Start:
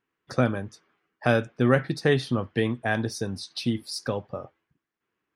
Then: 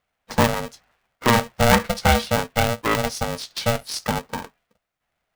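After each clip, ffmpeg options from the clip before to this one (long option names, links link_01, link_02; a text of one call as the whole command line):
ffmpeg -i in.wav -af "aeval=exprs='val(0)*sgn(sin(2*PI*350*n/s))':channel_layout=same,volume=4.5dB" out.wav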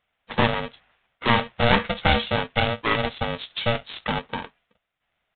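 ffmpeg -i in.wav -af "highshelf=frequency=2700:gain=11.5,aresample=8000,aeval=exprs='clip(val(0),-1,0.106)':channel_layout=same,aresample=44100,volume=-1.5dB" out.wav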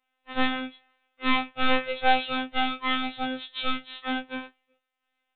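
ffmpeg -i in.wav -af "afftfilt=real='hypot(re,im)*cos(PI*b)':imag='0':win_size=2048:overlap=0.75,afftfilt=real='re*2.45*eq(mod(b,6),0)':imag='im*2.45*eq(mod(b,6),0)':win_size=2048:overlap=0.75" out.wav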